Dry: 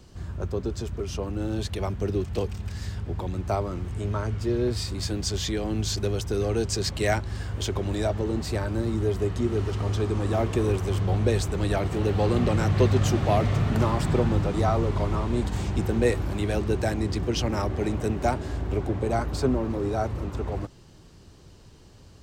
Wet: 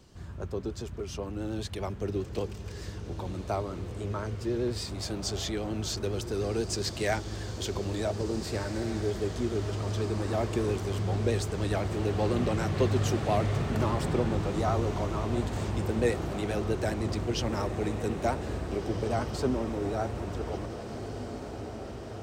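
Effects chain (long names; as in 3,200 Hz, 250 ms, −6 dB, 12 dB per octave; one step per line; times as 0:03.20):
pitch vibrato 10 Hz 44 cents
low-shelf EQ 96 Hz −6 dB
feedback delay with all-pass diffusion 1,824 ms, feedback 65%, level −10 dB
level −4 dB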